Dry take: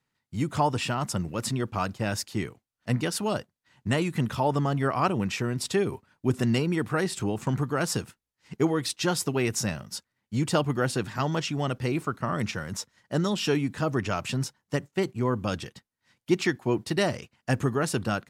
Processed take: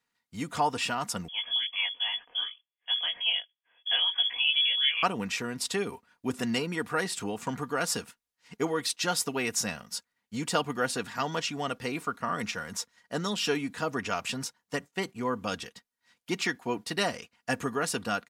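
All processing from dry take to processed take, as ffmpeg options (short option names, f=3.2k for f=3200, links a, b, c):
-filter_complex "[0:a]asettb=1/sr,asplit=3[a][b][c];[a]atrim=end=1.284[d];[b]atrim=start=1.28:end=5.03,asetpts=PTS-STARTPTS,afade=t=in:d=0.004:c=qsin,afade=t=out:st=3.746:d=0.004:c=qsin,bandreject=f=2.1k:w=12,flanger=delay=17:depth=6.4:speed=1.3,lowpass=f=3k:t=q:w=0.5098,lowpass=f=3k:t=q:w=0.6013,lowpass=f=3k:t=q:w=0.9,lowpass=f=3k:t=q:w=2.563,afreqshift=-3500[e];[c]atrim=start=5.026[f];[d][e]acrossfade=d=0.004:c1=hsin:c2=qsin[g];[g][f]acrossfade=d=0.004:c1=qsin:c2=hsin,lowshelf=f=380:g=-10.5,aecho=1:1:4.2:0.45"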